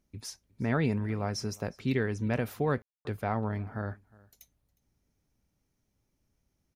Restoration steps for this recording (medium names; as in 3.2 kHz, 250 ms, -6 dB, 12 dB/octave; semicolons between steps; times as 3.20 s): room tone fill 2.82–3.05 s; inverse comb 360 ms -24 dB